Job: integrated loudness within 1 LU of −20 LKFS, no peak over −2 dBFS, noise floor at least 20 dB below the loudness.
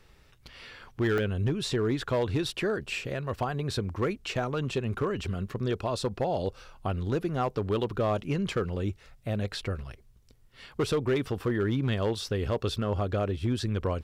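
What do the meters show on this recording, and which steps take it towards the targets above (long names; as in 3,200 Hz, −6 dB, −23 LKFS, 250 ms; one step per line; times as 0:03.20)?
share of clipped samples 0.9%; peaks flattened at −20.5 dBFS; number of dropouts 1; longest dropout 1.7 ms; integrated loudness −30.5 LKFS; sample peak −20.5 dBFS; target loudness −20.0 LKFS
→ clipped peaks rebuilt −20.5 dBFS
repair the gap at 0:01.18, 1.7 ms
level +10.5 dB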